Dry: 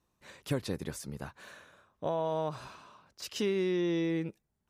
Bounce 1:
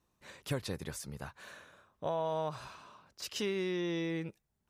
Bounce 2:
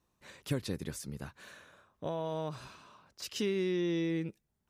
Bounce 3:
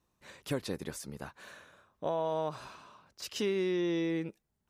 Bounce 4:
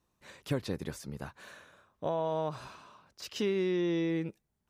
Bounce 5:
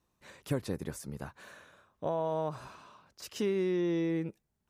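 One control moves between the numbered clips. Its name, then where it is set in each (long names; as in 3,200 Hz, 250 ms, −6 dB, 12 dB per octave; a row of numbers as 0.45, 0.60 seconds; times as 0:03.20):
dynamic equaliser, frequency: 280, 800, 100, 9,900, 3,700 Hertz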